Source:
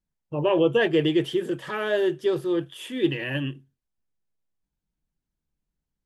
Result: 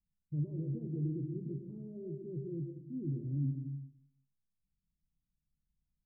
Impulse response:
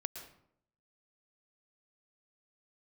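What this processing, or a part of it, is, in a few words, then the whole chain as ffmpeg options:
club heard from the street: -filter_complex "[0:a]alimiter=limit=-17.5dB:level=0:latency=1:release=29,lowpass=frequency=220:width=0.5412,lowpass=frequency=220:width=1.3066[link_01];[1:a]atrim=start_sample=2205[link_02];[link_01][link_02]afir=irnorm=-1:irlink=0"

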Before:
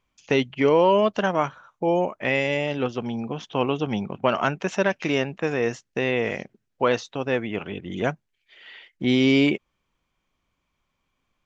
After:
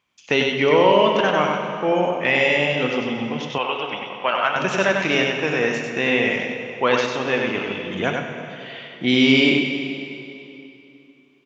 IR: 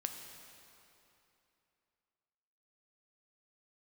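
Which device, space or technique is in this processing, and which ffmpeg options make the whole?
PA in a hall: -filter_complex "[0:a]highpass=110,equalizer=frequency=2800:width_type=o:width=2:gain=6.5,aecho=1:1:97:0.631[link_01];[1:a]atrim=start_sample=2205[link_02];[link_01][link_02]afir=irnorm=-1:irlink=0,asettb=1/sr,asplit=3[link_03][link_04][link_05];[link_03]atrim=end=3.584[link_06];[link_04]atrim=start=3.58:end=4.56,asetpts=PTS-STARTPTS,afade=type=in:duration=0.004:curve=qsin,afade=type=out:start_time=0.976:duration=0.004:curve=qsin,acrossover=split=500 4300:gain=0.141 1 0.0708[link_07][link_08][link_09];[link_07][link_08][link_09]amix=inputs=3:normalize=0[link_10];[link_05]atrim=start=4.556[link_11];[link_06][link_10]acrossfade=duration=0.004:curve1=hsin:curve2=qsin[link_12];[link_12][link_11]acrossfade=duration=0.004:curve1=qsin:curve2=hsin,volume=1.5dB"

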